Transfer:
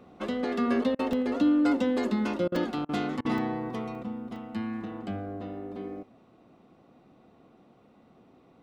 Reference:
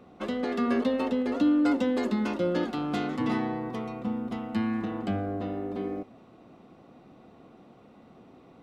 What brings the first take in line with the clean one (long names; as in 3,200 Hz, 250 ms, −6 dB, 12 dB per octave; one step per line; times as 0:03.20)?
repair the gap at 0:01.13/0:02.56/0:03.38/0:03.95/0:04.36, 2.6 ms
repair the gap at 0:00.95/0:02.48/0:02.85/0:03.21, 39 ms
level 0 dB, from 0:04.03 +5 dB